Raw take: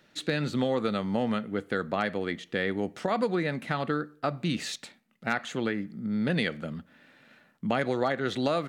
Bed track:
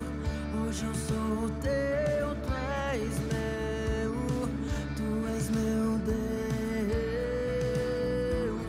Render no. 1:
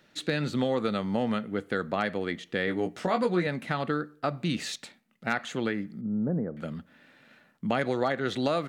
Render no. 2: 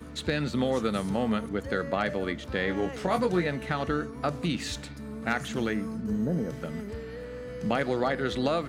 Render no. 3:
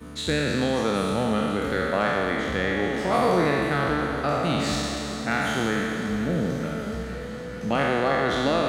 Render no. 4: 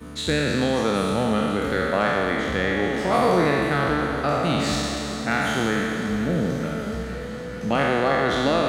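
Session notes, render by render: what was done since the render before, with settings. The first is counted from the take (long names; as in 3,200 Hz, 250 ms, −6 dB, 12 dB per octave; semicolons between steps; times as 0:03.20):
0:02.66–0:03.47: double-tracking delay 17 ms −5 dB; 0:06.01–0:06.57: Gaussian smoothing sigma 9.5 samples
mix in bed track −8 dB
peak hold with a decay on every bin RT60 2.48 s; delay that swaps between a low-pass and a high-pass 221 ms, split 1,100 Hz, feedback 87%, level −13 dB
level +2 dB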